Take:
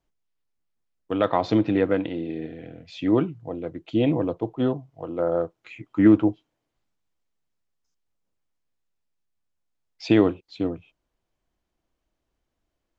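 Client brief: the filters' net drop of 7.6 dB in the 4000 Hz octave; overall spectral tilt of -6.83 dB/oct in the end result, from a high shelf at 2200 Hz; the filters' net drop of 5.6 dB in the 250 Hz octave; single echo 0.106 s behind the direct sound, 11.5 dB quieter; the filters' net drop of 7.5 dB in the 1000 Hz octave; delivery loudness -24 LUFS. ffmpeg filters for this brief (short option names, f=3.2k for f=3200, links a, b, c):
-af "equalizer=f=250:t=o:g=-7,equalizer=f=1k:t=o:g=-9,highshelf=f=2.2k:g=-4,equalizer=f=4k:t=o:g=-5.5,aecho=1:1:106:0.266,volume=4.5dB"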